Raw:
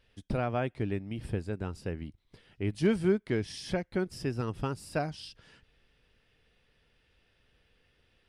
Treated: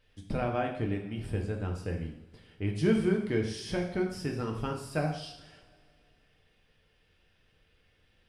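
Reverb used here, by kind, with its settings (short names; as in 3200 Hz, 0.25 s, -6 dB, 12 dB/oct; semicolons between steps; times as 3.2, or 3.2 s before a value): two-slope reverb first 0.66 s, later 2.8 s, from -22 dB, DRR 0.5 dB; gain -2 dB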